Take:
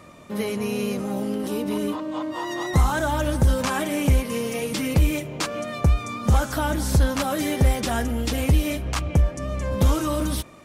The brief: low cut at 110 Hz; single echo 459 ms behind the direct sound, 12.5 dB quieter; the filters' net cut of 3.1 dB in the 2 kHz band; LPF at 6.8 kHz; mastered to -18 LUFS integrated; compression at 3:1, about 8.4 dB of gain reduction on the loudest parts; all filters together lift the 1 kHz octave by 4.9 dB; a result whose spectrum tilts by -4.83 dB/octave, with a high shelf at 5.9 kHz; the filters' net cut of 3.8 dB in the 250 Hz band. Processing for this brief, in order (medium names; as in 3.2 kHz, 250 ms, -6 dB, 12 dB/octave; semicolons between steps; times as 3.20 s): high-pass 110 Hz; low-pass 6.8 kHz; peaking EQ 250 Hz -5 dB; peaking EQ 1 kHz +8 dB; peaking EQ 2 kHz -8 dB; treble shelf 5.9 kHz +4.5 dB; compression 3:1, threshold -29 dBFS; delay 459 ms -12.5 dB; trim +13.5 dB